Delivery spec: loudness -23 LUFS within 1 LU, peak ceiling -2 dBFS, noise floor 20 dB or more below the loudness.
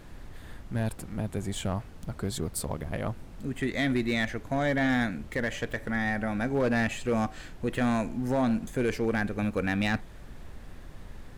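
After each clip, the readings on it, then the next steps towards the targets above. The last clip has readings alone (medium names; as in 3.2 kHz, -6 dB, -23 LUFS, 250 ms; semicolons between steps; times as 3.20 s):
clipped samples 1.1%; clipping level -20.5 dBFS; noise floor -46 dBFS; noise floor target -50 dBFS; loudness -30.0 LUFS; peak level -20.5 dBFS; loudness target -23.0 LUFS
-> clip repair -20.5 dBFS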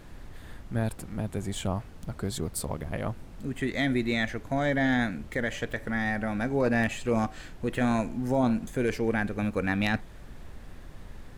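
clipped samples 0.0%; noise floor -46 dBFS; noise floor target -50 dBFS
-> noise print and reduce 6 dB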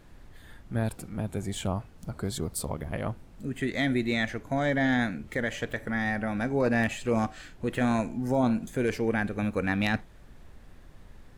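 noise floor -51 dBFS; loudness -29.5 LUFS; peak level -12.0 dBFS; loudness target -23.0 LUFS
-> trim +6.5 dB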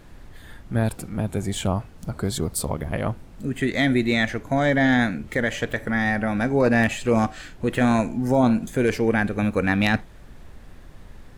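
loudness -23.0 LUFS; peak level -5.5 dBFS; noise floor -45 dBFS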